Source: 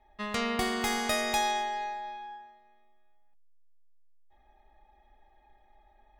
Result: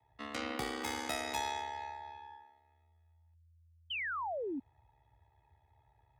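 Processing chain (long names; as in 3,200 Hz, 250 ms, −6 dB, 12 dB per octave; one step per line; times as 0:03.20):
ring modulation 35 Hz
frequency shifter +48 Hz
sound drawn into the spectrogram fall, 0:03.90–0:04.60, 250–3,200 Hz −32 dBFS
level −5.5 dB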